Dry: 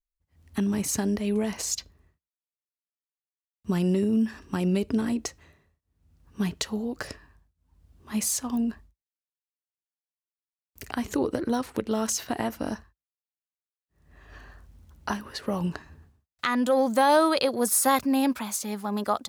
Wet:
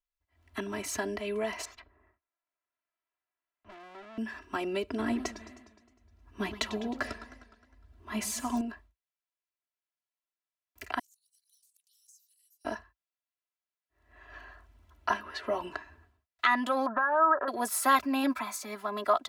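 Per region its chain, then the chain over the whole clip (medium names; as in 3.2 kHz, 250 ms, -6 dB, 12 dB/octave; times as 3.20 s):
1.65–4.18 s: low-pass 2.1 kHz + valve stage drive 43 dB, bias 0.5 + three bands compressed up and down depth 40%
4.99–8.61 s: bass shelf 340 Hz +8.5 dB + modulated delay 103 ms, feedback 62%, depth 208 cents, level -14 dB
10.99–12.65 s: inverse Chebyshev high-pass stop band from 1.2 kHz, stop band 80 dB + compression 2.5:1, threshold -58 dBFS
15.13–15.62 s: treble shelf 8.9 kHz -8 dB + doubling 13 ms -8 dB
16.86–17.48 s: brick-wall FIR low-pass 1.9 kHz + peaking EQ 1.4 kHz +13.5 dB 1.9 oct + compression 4:1, threshold -25 dBFS
18.23–18.76 s: peaking EQ 3.1 kHz -9.5 dB 0.31 oct + comb 3.9 ms, depth 32%
whole clip: three-band isolator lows -12 dB, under 520 Hz, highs -12 dB, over 3.4 kHz; comb 3 ms, depth 95%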